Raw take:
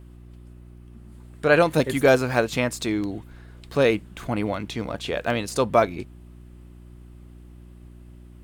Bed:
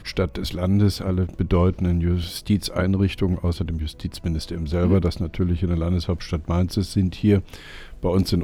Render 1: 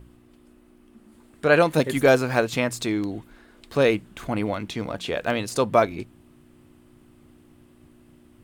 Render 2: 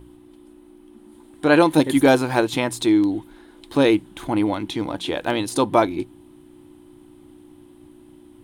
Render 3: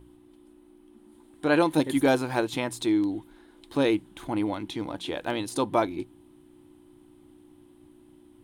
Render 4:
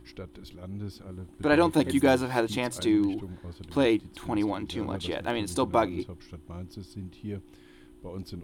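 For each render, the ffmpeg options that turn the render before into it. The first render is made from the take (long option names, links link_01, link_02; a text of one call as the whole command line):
ffmpeg -i in.wav -af "bandreject=frequency=60:width_type=h:width=4,bandreject=frequency=120:width_type=h:width=4,bandreject=frequency=180:width_type=h:width=4" out.wav
ffmpeg -i in.wav -af "superequalizer=6b=3.16:9b=2.24:13b=1.78:16b=2" out.wav
ffmpeg -i in.wav -af "volume=-7dB" out.wav
ffmpeg -i in.wav -i bed.wav -filter_complex "[1:a]volume=-19dB[link_01];[0:a][link_01]amix=inputs=2:normalize=0" out.wav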